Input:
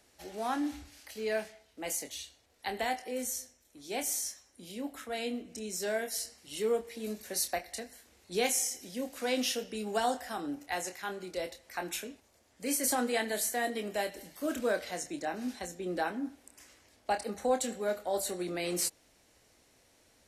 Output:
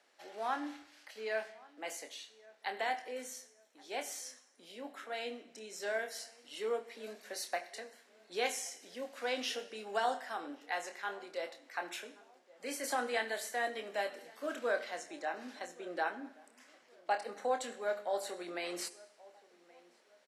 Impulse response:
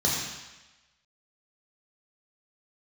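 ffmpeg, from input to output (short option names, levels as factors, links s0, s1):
-filter_complex "[0:a]highpass=620,aemphasis=mode=reproduction:type=75fm,asplit=2[s0][s1];[s1]adelay=1125,lowpass=f=1600:p=1,volume=0.0794,asplit=2[s2][s3];[s3]adelay=1125,lowpass=f=1600:p=1,volume=0.39,asplit=2[s4][s5];[s5]adelay=1125,lowpass=f=1600:p=1,volume=0.39[s6];[s0][s2][s4][s6]amix=inputs=4:normalize=0,asplit=2[s7][s8];[1:a]atrim=start_sample=2205,asetrate=66150,aresample=44100[s9];[s8][s9]afir=irnorm=-1:irlink=0,volume=0.075[s10];[s7][s10]amix=inputs=2:normalize=0,volume=1.12"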